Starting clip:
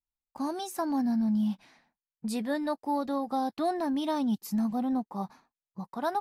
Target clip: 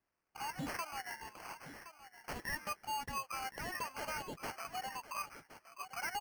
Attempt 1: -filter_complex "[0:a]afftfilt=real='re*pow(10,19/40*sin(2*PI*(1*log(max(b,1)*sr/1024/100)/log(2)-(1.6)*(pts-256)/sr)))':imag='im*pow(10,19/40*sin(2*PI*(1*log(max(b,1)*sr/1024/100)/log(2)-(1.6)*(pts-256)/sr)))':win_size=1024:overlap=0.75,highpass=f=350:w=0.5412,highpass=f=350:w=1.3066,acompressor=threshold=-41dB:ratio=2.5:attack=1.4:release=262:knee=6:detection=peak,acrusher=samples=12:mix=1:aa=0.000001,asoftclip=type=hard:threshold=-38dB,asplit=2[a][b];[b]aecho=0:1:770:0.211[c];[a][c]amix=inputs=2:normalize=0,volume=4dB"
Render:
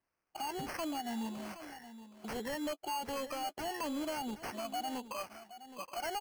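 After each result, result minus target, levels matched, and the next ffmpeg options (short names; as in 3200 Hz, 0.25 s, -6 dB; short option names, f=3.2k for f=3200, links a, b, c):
250 Hz band +8.5 dB; echo 0.299 s early
-filter_complex "[0:a]afftfilt=real='re*pow(10,19/40*sin(2*PI*(1*log(max(b,1)*sr/1024/100)/log(2)-(1.6)*(pts-256)/sr)))':imag='im*pow(10,19/40*sin(2*PI*(1*log(max(b,1)*sr/1024/100)/log(2)-(1.6)*(pts-256)/sr)))':win_size=1024:overlap=0.75,highpass=f=1.1k:w=0.5412,highpass=f=1.1k:w=1.3066,acompressor=threshold=-41dB:ratio=2.5:attack=1.4:release=262:knee=6:detection=peak,acrusher=samples=12:mix=1:aa=0.000001,asoftclip=type=hard:threshold=-38dB,asplit=2[a][b];[b]aecho=0:1:770:0.211[c];[a][c]amix=inputs=2:normalize=0,volume=4dB"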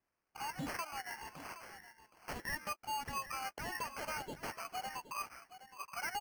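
echo 0.299 s early
-filter_complex "[0:a]afftfilt=real='re*pow(10,19/40*sin(2*PI*(1*log(max(b,1)*sr/1024/100)/log(2)-(1.6)*(pts-256)/sr)))':imag='im*pow(10,19/40*sin(2*PI*(1*log(max(b,1)*sr/1024/100)/log(2)-(1.6)*(pts-256)/sr)))':win_size=1024:overlap=0.75,highpass=f=1.1k:w=0.5412,highpass=f=1.1k:w=1.3066,acompressor=threshold=-41dB:ratio=2.5:attack=1.4:release=262:knee=6:detection=peak,acrusher=samples=12:mix=1:aa=0.000001,asoftclip=type=hard:threshold=-38dB,asplit=2[a][b];[b]aecho=0:1:1069:0.211[c];[a][c]amix=inputs=2:normalize=0,volume=4dB"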